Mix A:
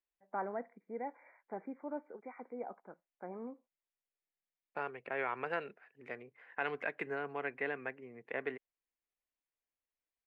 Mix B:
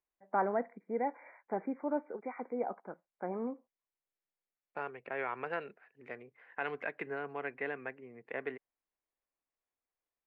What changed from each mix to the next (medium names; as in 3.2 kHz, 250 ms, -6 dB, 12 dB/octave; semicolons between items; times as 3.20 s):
first voice +7.5 dB; master: add treble shelf 5.4 kHz -9.5 dB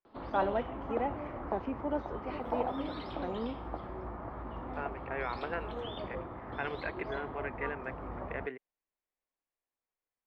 first voice: remove brick-wall FIR low-pass 2.4 kHz; background: unmuted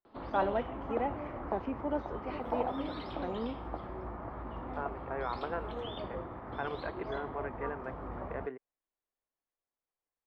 second voice: add resonant high shelf 1.6 kHz -9 dB, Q 1.5